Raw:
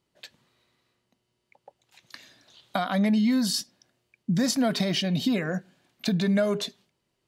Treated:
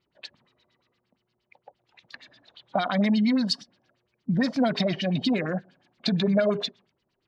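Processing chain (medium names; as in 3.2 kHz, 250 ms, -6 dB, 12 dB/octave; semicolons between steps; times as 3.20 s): coarse spectral quantiser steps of 15 dB; LFO low-pass sine 8.6 Hz 570–5100 Hz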